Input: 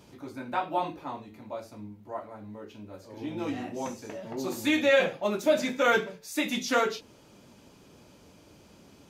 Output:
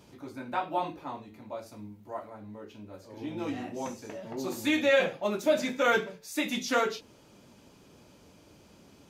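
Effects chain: 1.66–2.30 s: treble shelf 4.5 kHz +6 dB; trim -1.5 dB

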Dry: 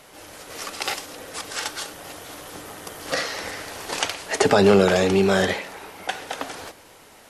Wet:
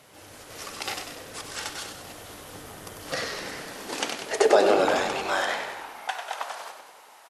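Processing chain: de-hum 92.73 Hz, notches 27; high-pass sweep 94 Hz -> 890 Hz, 3.07–5.00 s; frequency-shifting echo 96 ms, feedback 56%, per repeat -54 Hz, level -7 dB; trim -5.5 dB

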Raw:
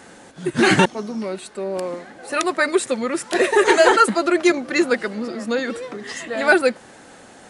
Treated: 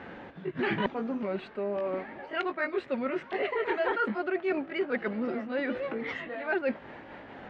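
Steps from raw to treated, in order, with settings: sawtooth pitch modulation +2 st, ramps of 1225 ms; low-pass 2.9 kHz 24 dB/octave; peaking EQ 65 Hz +3.5 dB 2.2 oct; reverse; compression 4:1, threshold -29 dBFS, peak gain reduction 16.5 dB; reverse

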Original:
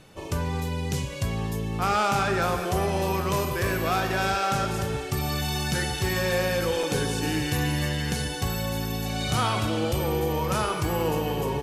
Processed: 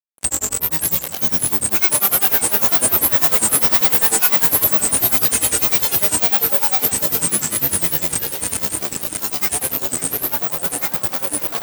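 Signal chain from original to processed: Doppler pass-by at 3.76 s, 24 m/s, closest 25 m; in parallel at -9 dB: companded quantiser 2-bit; on the sum: careless resampling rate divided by 3×, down filtered, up zero stuff; fuzz box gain 30 dB, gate -36 dBFS; feedback echo behind a band-pass 425 ms, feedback 76%, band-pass 480 Hz, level -6 dB; granulator, grains 10 per s, pitch spread up and down by 12 st; reverse; upward compressor, threshold -24 dBFS; reverse; high-pass 160 Hz 6 dB/octave; treble shelf 5.5 kHz +8.5 dB; two-band feedback delay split 990 Hz, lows 167 ms, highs 545 ms, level -14.5 dB; trim +1 dB

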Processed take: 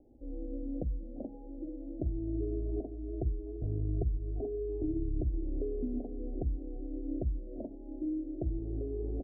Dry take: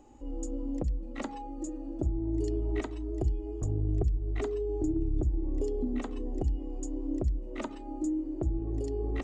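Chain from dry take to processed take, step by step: Chebyshev low-pass 710 Hz, order 6; delay 342 ms -24 dB; trim -3 dB

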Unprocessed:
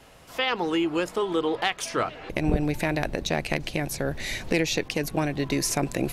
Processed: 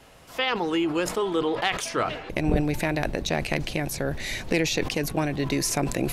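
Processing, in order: decay stretcher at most 78 dB/s

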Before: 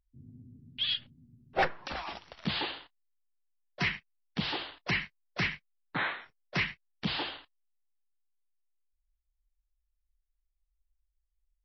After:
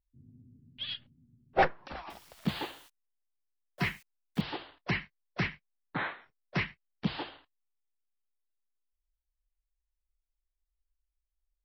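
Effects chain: 2.10–4.41 s: zero-crossing glitches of -36.5 dBFS; treble shelf 2.1 kHz -9 dB; upward expansion 1.5:1, over -44 dBFS; trim +5 dB

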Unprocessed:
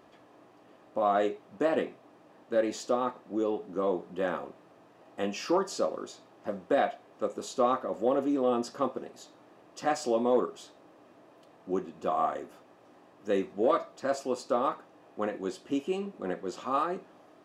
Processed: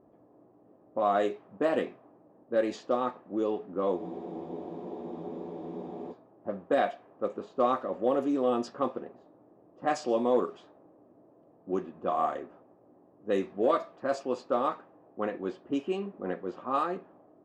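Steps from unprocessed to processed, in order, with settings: level-controlled noise filter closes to 530 Hz, open at -22.5 dBFS; spectral freeze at 4.00 s, 2.12 s

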